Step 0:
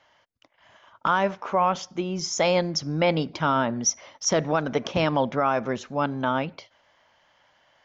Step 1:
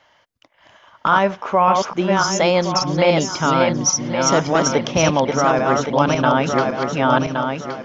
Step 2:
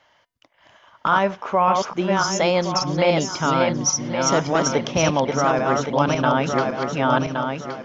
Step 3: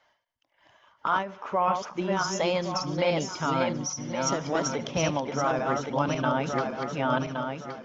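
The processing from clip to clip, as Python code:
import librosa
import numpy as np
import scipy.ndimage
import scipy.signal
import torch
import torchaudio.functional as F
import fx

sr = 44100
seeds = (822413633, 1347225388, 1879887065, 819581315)

y1 = fx.reverse_delay_fb(x, sr, ms=559, feedback_pct=51, wet_db=-3)
y1 = fx.rider(y1, sr, range_db=5, speed_s=0.5)
y1 = y1 * 10.0 ** (6.0 / 20.0)
y2 = fx.comb_fb(y1, sr, f0_hz=140.0, decay_s=0.43, harmonics='odd', damping=0.0, mix_pct=30)
y3 = fx.spec_quant(y2, sr, step_db=15)
y3 = fx.echo_thinned(y3, sr, ms=74, feedback_pct=71, hz=330.0, wet_db=-23.5)
y3 = fx.end_taper(y3, sr, db_per_s=120.0)
y3 = y3 * 10.0 ** (-6.5 / 20.0)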